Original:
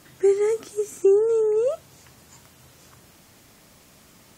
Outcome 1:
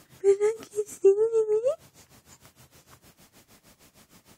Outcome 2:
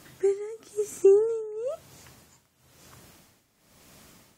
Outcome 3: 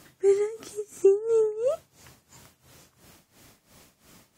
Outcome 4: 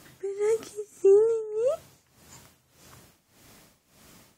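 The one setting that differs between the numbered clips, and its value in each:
tremolo, rate: 6.5 Hz, 1 Hz, 2.9 Hz, 1.7 Hz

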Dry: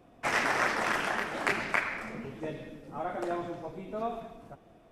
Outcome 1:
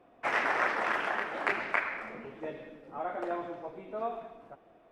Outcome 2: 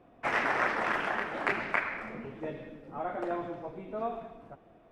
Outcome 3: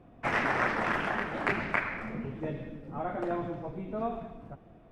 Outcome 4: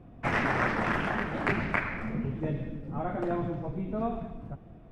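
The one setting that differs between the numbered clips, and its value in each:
tone controls, bass: -12 dB, -3 dB, +7 dB, +15 dB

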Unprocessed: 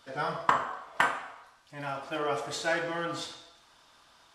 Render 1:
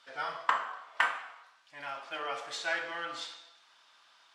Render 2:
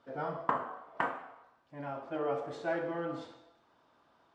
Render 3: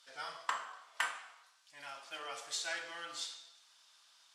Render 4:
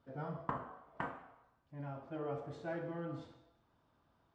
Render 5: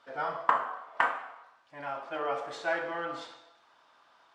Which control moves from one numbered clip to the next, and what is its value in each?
band-pass filter, frequency: 2.5 kHz, 320 Hz, 6.8 kHz, 110 Hz, 920 Hz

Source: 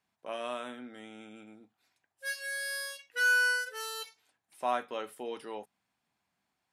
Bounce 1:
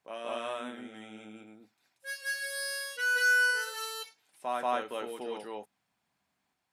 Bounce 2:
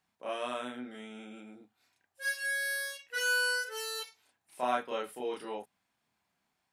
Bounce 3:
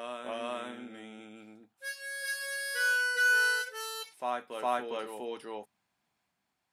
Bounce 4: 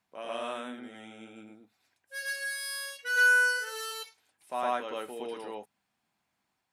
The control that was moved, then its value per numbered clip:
reverse echo, time: 184 ms, 32 ms, 408 ms, 111 ms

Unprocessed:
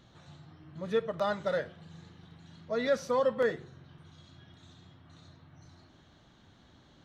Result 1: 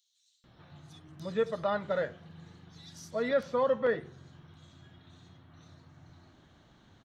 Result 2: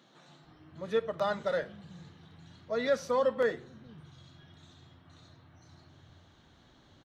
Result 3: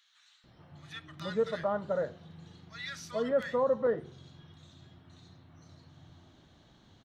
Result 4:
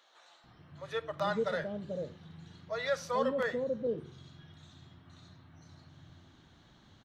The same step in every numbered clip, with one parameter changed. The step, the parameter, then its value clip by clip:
bands offset in time, split: 4.3 kHz, 170 Hz, 1.5 kHz, 510 Hz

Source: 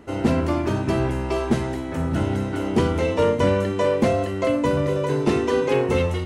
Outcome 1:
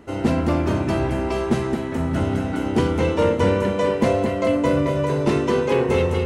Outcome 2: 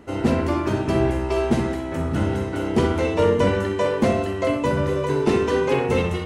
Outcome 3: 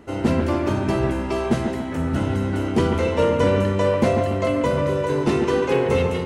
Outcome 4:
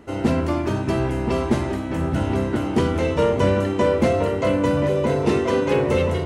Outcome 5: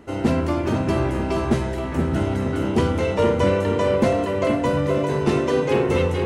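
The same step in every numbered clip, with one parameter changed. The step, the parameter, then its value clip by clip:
feedback echo behind a low-pass, time: 220 ms, 64 ms, 143 ms, 1028 ms, 475 ms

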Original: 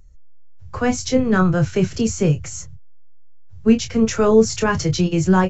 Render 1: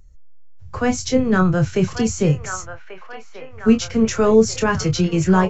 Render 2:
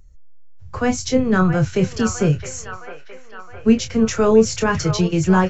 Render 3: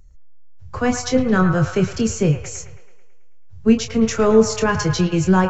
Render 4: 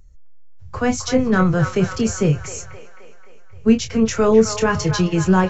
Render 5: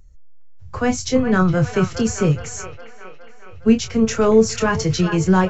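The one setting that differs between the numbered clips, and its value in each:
feedback echo behind a band-pass, time: 1138 ms, 665 ms, 109 ms, 263 ms, 414 ms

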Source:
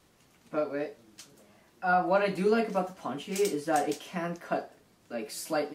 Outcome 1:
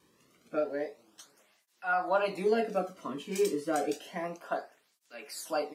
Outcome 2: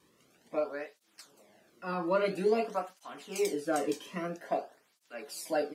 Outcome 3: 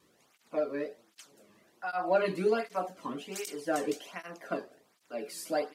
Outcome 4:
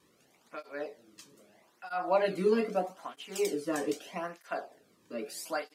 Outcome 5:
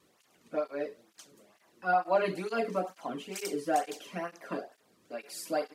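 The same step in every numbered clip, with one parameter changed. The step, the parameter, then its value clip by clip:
cancelling through-zero flanger, nulls at: 0.3 Hz, 0.5 Hz, 1.3 Hz, 0.79 Hz, 2.2 Hz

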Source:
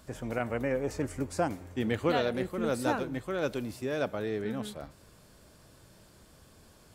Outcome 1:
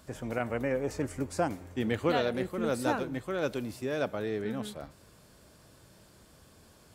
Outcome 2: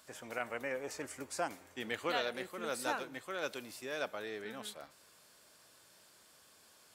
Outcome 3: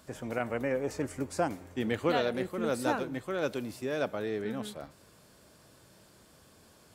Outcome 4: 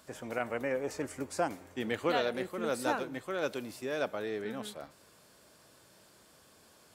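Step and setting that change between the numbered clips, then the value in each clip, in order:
high-pass, cutoff frequency: 43 Hz, 1.3 kHz, 140 Hz, 410 Hz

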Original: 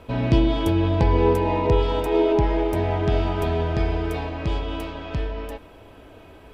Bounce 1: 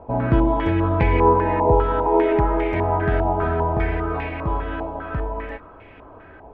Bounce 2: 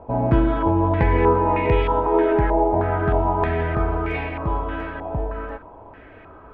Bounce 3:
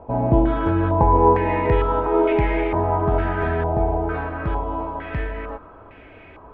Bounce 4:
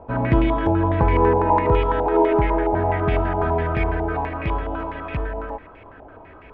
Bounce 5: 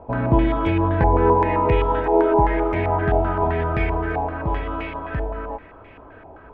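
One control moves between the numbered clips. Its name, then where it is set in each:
step-sequenced low-pass, rate: 5 Hz, 3.2 Hz, 2.2 Hz, 12 Hz, 7.7 Hz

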